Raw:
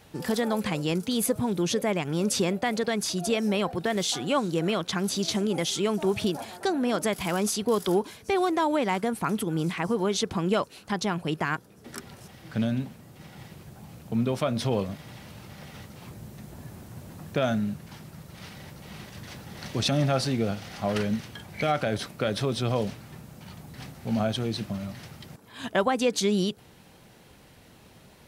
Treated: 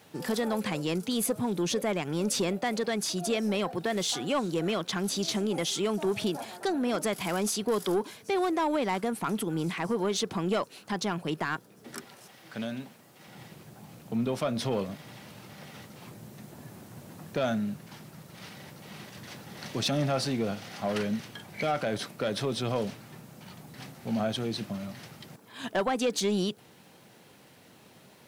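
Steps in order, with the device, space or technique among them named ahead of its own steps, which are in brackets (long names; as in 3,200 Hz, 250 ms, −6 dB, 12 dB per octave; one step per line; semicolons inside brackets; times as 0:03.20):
high-pass filter 180 Hz 12 dB per octave
0:12.04–0:13.28: low-shelf EQ 270 Hz −11.5 dB
open-reel tape (soft clipping −19 dBFS, distortion −17 dB; parametric band 110 Hz +4 dB 0.92 octaves; white noise bed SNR 42 dB)
level −1 dB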